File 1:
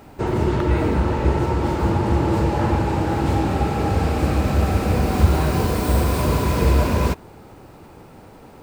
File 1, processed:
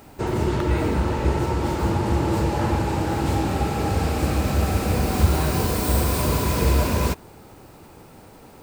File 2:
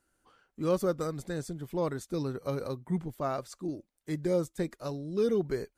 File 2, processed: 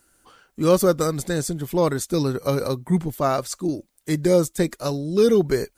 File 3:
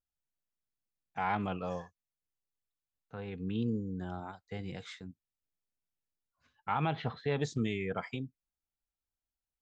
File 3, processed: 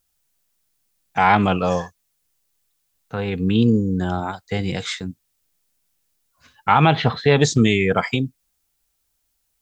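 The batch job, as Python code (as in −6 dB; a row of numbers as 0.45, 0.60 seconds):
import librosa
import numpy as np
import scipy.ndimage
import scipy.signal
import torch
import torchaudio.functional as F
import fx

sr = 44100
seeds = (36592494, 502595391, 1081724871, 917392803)

y = fx.high_shelf(x, sr, hz=4200.0, db=8.5)
y = y * 10.0 ** (-22 / 20.0) / np.sqrt(np.mean(np.square(y)))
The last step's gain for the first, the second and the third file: −2.5, +10.5, +17.0 decibels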